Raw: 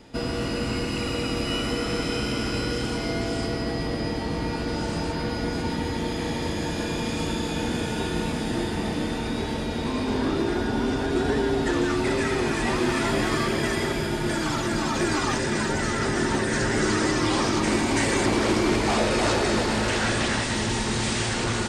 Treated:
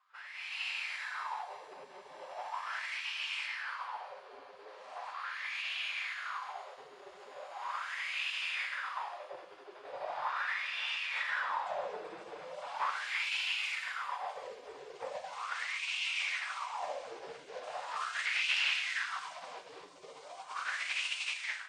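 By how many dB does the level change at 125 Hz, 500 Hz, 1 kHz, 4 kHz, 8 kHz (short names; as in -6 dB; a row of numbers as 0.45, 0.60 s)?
under -40 dB, -20.5 dB, -10.0 dB, -8.5 dB, -18.5 dB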